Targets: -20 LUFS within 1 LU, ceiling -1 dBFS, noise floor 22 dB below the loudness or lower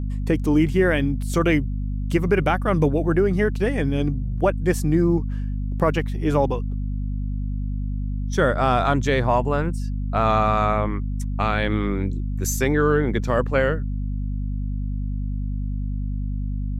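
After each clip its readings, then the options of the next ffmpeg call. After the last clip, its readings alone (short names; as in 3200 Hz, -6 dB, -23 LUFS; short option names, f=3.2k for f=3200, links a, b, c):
hum 50 Hz; harmonics up to 250 Hz; hum level -23 dBFS; loudness -23.0 LUFS; peak -7.5 dBFS; loudness target -20.0 LUFS
-> -af "bandreject=f=50:t=h:w=6,bandreject=f=100:t=h:w=6,bandreject=f=150:t=h:w=6,bandreject=f=200:t=h:w=6,bandreject=f=250:t=h:w=6"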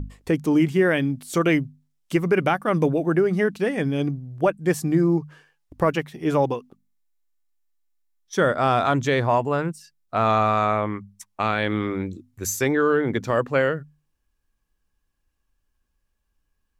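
hum none; loudness -22.5 LUFS; peak -9.0 dBFS; loudness target -20.0 LUFS
-> -af "volume=2.5dB"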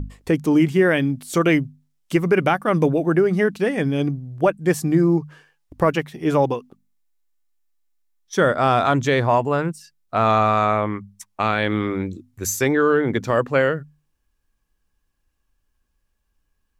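loudness -20.0 LUFS; peak -6.5 dBFS; noise floor -72 dBFS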